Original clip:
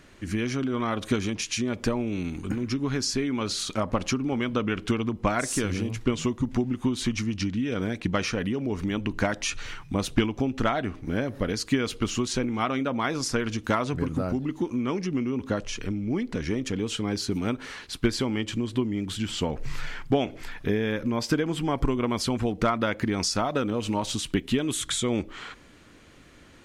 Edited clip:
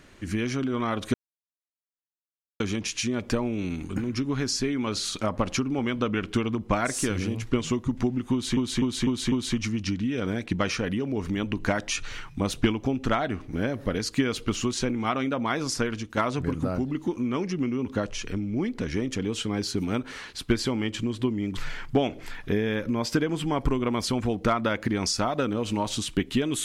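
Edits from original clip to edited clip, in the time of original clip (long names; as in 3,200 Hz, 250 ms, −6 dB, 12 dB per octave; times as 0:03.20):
0:01.14: splice in silence 1.46 s
0:06.86–0:07.11: repeat, 5 plays
0:13.34–0:13.71: fade out linear, to −8 dB
0:19.11–0:19.74: remove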